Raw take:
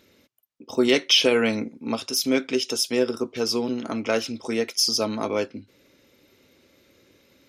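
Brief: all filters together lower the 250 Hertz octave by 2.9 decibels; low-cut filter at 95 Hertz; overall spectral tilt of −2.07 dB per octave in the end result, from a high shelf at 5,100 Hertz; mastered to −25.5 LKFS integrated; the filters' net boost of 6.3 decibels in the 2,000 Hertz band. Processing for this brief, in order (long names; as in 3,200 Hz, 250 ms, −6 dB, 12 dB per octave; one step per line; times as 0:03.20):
high-pass filter 95 Hz
parametric band 250 Hz −3.5 dB
parametric band 2,000 Hz +9 dB
high-shelf EQ 5,100 Hz −5.5 dB
level −2.5 dB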